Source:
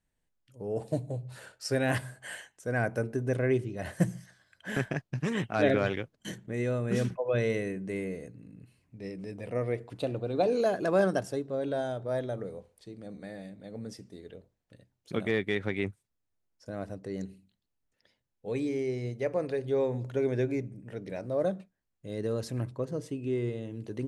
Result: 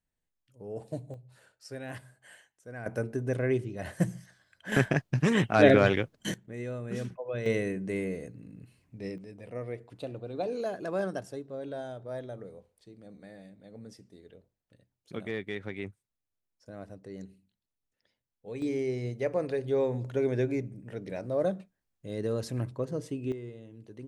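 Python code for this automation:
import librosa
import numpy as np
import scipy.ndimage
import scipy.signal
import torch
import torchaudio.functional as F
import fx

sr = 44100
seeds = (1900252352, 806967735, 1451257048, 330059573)

y = fx.gain(x, sr, db=fx.steps((0.0, -6.0), (1.14, -12.5), (2.86, -1.0), (4.72, 6.0), (6.34, -6.5), (7.46, 2.0), (9.18, -6.5), (18.62, 0.5), (23.32, -10.0)))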